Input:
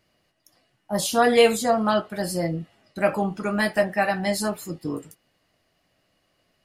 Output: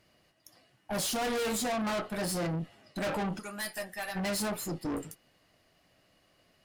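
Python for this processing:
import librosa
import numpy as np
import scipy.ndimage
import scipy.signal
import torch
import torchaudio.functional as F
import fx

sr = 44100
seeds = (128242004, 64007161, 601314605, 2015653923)

y = fx.pre_emphasis(x, sr, coefficient=0.9, at=(3.38, 4.15), fade=0.02)
y = fx.tube_stage(y, sr, drive_db=33.0, bias=0.4)
y = F.gain(torch.from_numpy(y), 3.0).numpy()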